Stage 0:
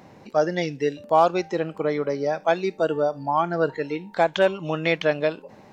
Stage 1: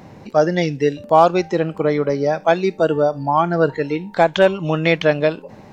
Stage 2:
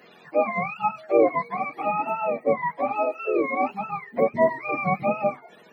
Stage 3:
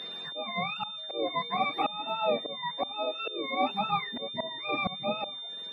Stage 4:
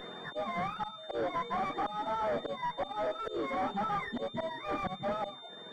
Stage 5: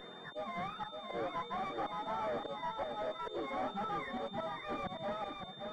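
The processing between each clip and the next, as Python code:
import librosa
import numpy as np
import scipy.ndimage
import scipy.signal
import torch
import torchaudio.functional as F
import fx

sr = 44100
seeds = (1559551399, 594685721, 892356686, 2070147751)

y1 = fx.low_shelf(x, sr, hz=160.0, db=9.0)
y1 = F.gain(torch.from_numpy(y1), 5.0).numpy()
y2 = fx.octave_mirror(y1, sr, pivot_hz=610.0)
y2 = scipy.signal.sosfilt(scipy.signal.butter(4, 190.0, 'highpass', fs=sr, output='sos'), y2)
y2 = F.gain(torch.from_numpy(y2), -5.5).numpy()
y3 = fx.auto_swell(y2, sr, attack_ms=688.0)
y3 = y3 + 10.0 ** (-40.0 / 20.0) * np.sin(2.0 * np.pi * 3600.0 * np.arange(len(y3)) / sr)
y3 = F.gain(torch.from_numpy(y3), 2.5).numpy()
y4 = fx.tube_stage(y3, sr, drive_db=38.0, bias=0.3)
y4 = scipy.signal.savgol_filter(y4, 41, 4, mode='constant')
y4 = F.gain(torch.from_numpy(y4), 8.5).numpy()
y5 = y4 + 10.0 ** (-5.5 / 20.0) * np.pad(y4, (int(567 * sr / 1000.0), 0))[:len(y4)]
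y5 = F.gain(torch.from_numpy(y5), -5.5).numpy()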